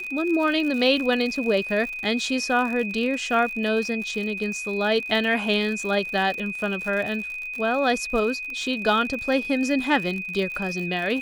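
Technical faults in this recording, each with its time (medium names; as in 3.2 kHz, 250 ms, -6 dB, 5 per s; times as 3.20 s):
crackle 77 per s -30 dBFS
whine 2.5 kHz -30 dBFS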